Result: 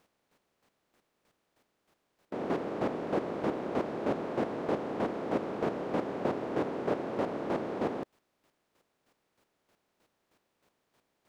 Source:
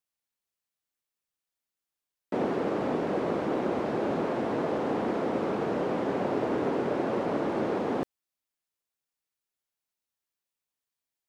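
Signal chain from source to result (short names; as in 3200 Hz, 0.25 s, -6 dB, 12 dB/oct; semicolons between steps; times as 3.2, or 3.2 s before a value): per-bin compression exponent 0.6; chopper 3.2 Hz, depth 60%, duty 20%; gain -2 dB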